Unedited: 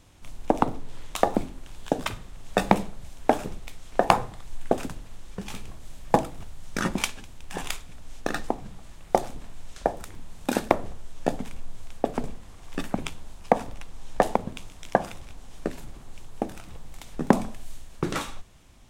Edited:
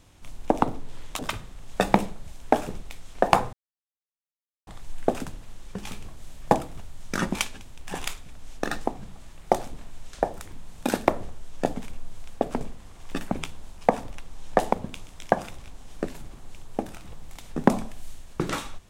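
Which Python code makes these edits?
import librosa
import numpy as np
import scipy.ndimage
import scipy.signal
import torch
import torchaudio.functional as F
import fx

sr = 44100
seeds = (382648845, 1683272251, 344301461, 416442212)

y = fx.edit(x, sr, fx.cut(start_s=1.19, length_s=0.77),
    fx.insert_silence(at_s=4.3, length_s=1.14), tone=tone)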